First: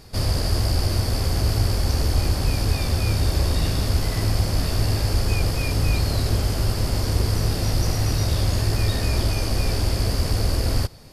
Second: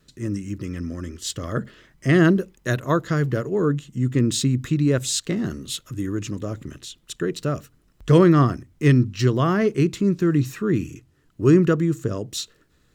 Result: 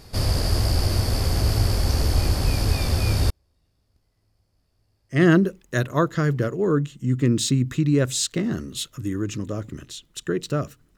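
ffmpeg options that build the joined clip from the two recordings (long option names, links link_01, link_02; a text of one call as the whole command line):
ffmpeg -i cue0.wav -i cue1.wav -filter_complex "[0:a]asettb=1/sr,asplit=3[link_01][link_02][link_03];[link_01]atrim=end=3.304[link_04];[link_02]atrim=start=3.3:end=5.22,asetpts=PTS-STARTPTS,afade=type=in:duration=0.004:curve=qsin,afade=type=out:start_time=1.916:duration=0.004:curve=qsin,agate=range=-47dB:threshold=-11dB:ratio=16:release=100:detection=peak[link_05];[link_03]atrim=start=5.216[link_06];[link_04][link_05]acrossfade=duration=0.004:curve1=hsin:curve2=qsin[link_07];[link_07][link_06]acrossfade=duration=0.004:curve1=qsin:curve2=hsin,apad=whole_dur=10.97,atrim=end=10.97,atrim=end=5.22,asetpts=PTS-STARTPTS[link_08];[1:a]atrim=start=2.01:end=7.9,asetpts=PTS-STARTPTS[link_09];[link_08][link_09]acrossfade=duration=0.14:curve1=tri:curve2=tri" out.wav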